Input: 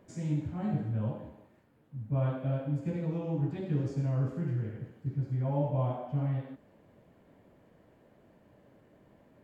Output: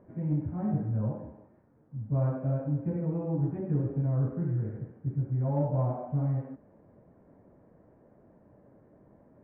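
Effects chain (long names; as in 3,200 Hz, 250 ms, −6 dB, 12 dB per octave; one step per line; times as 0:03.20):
Gaussian smoothing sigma 5.7 samples
in parallel at −8 dB: soft clipping −27 dBFS, distortion −16 dB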